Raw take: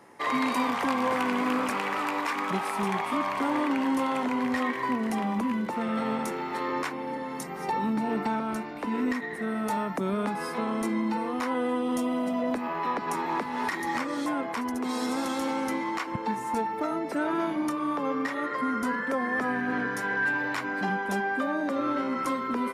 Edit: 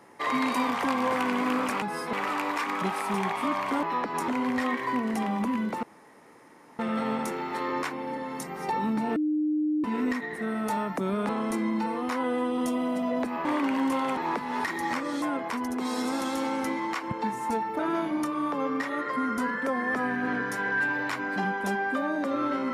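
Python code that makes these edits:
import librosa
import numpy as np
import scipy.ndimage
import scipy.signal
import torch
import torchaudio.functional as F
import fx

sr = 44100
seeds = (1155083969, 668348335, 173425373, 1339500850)

y = fx.edit(x, sr, fx.swap(start_s=3.52, length_s=0.72, other_s=12.76, other_length_s=0.45),
    fx.insert_room_tone(at_s=5.79, length_s=0.96),
    fx.bleep(start_s=8.16, length_s=0.68, hz=304.0, db=-23.0),
    fx.move(start_s=10.29, length_s=0.31, to_s=1.82),
    fx.cut(start_s=16.83, length_s=0.41), tone=tone)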